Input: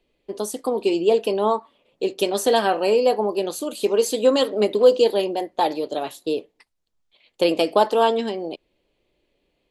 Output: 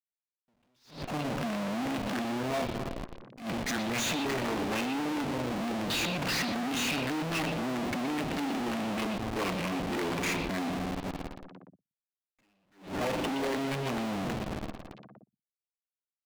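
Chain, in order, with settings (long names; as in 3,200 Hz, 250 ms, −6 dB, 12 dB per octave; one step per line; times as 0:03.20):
high-pass filter 97 Hz 24 dB per octave
high-shelf EQ 4,100 Hz +6.5 dB
downward compressor 5 to 1, threshold −22 dBFS, peak gain reduction 12.5 dB
all-pass phaser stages 6, 2.4 Hz, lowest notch 620–1,400 Hz
spring reverb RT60 2.6 s, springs 32 ms, chirp 55 ms, DRR 12.5 dB
change of speed 0.597×
comparator with hysteresis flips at −43.5 dBFS
mid-hump overdrive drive 23 dB, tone 5,100 Hz, clips at −25.5 dBFS
on a send: echo through a band-pass that steps 120 ms, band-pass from 3,200 Hz, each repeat −1.4 octaves, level −5 dB
on the sum: level that may rise only so fast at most 150 dB per second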